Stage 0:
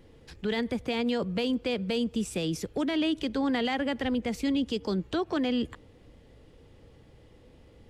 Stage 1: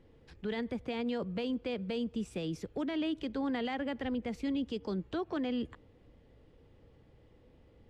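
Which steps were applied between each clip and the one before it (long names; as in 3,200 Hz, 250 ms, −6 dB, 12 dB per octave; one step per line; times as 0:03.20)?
low-pass filter 2,700 Hz 6 dB per octave
level −6 dB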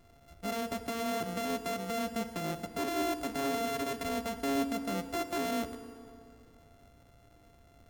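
samples sorted by size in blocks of 64 samples
feedback delay network reverb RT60 2.6 s, high-frequency decay 0.65×, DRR 9 dB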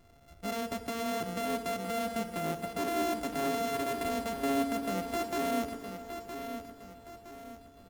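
repeating echo 965 ms, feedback 40%, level −9 dB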